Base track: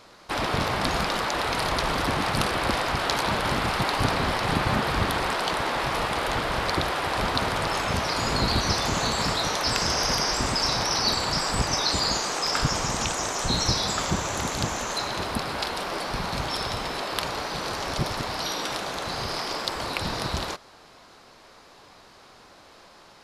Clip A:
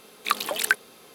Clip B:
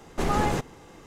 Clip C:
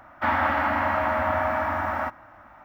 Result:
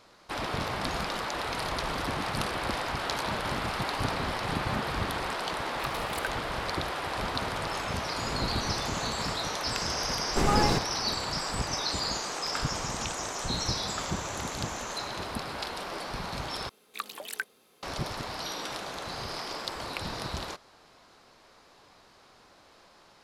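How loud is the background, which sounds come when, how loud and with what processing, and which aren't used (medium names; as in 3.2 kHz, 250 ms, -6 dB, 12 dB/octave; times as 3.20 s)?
base track -6.5 dB
2.14 s: add C -6.5 dB + compression 10:1, threshold -37 dBFS
5.54 s: add A -15 dB
8.23 s: add B -8.5 dB + compression, threshold -29 dBFS
10.18 s: add B
16.69 s: replace with A -12.5 dB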